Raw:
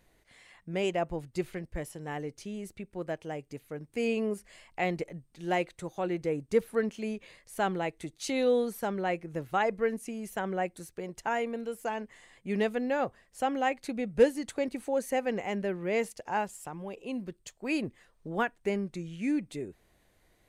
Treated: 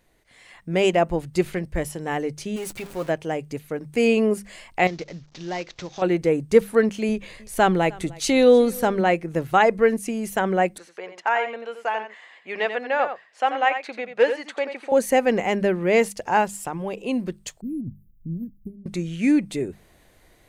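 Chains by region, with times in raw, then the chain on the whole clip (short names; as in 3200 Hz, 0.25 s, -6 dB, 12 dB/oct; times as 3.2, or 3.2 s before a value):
2.56–3.09 zero-crossing step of -44.5 dBFS + low shelf 390 Hz -7 dB + comb 7.3 ms, depth 40%
4.87–6.02 CVSD 32 kbps + compressor 2:1, threshold -47 dBFS + high shelf 4000 Hz +8.5 dB
7.09–9.01 low shelf 88 Hz +11 dB + echo 0.305 s -23 dB
10.78–14.92 BPF 710–3200 Hz + echo 87 ms -9 dB
17.61–18.86 inverse Chebyshev band-stop 690–6600 Hz, stop band 60 dB + negative-ratio compressor -41 dBFS
whole clip: notches 50/100/150/200 Hz; AGC gain up to 9 dB; gain +2 dB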